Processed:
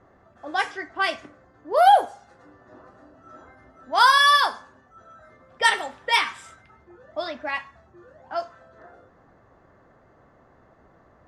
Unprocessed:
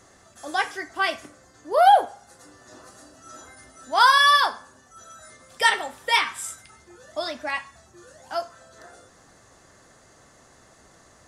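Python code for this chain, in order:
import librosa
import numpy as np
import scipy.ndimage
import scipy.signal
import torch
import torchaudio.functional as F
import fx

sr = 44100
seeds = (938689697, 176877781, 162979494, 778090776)

y = fx.env_lowpass(x, sr, base_hz=1300.0, full_db=-17.0)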